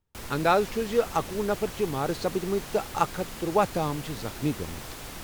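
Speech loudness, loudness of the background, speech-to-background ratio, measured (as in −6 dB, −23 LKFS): −28.5 LKFS, −39.0 LKFS, 10.5 dB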